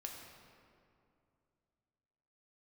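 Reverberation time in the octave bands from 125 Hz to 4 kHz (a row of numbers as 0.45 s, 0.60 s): 3.2 s, 2.9 s, 2.7 s, 2.4 s, 1.9 s, 1.4 s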